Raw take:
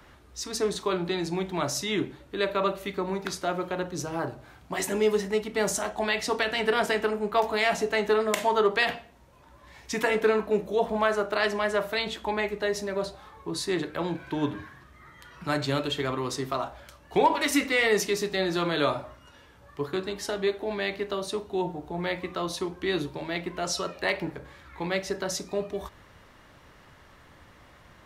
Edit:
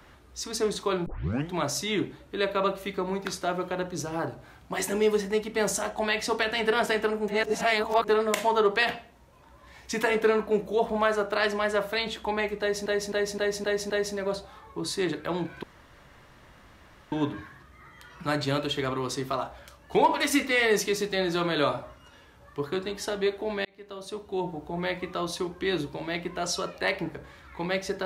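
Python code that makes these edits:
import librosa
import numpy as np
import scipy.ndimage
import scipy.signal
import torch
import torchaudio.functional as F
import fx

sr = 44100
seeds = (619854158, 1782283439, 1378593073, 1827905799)

y = fx.edit(x, sr, fx.tape_start(start_s=1.06, length_s=0.45),
    fx.reverse_span(start_s=7.28, length_s=0.8),
    fx.repeat(start_s=12.6, length_s=0.26, count=6),
    fx.insert_room_tone(at_s=14.33, length_s=1.49),
    fx.fade_in_span(start_s=20.86, length_s=0.89), tone=tone)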